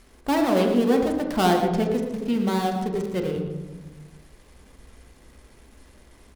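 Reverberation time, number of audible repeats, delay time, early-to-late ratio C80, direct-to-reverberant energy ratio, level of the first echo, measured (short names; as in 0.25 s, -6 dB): 1.2 s, 1, 0.115 s, 5.5 dB, 1.5 dB, -9.5 dB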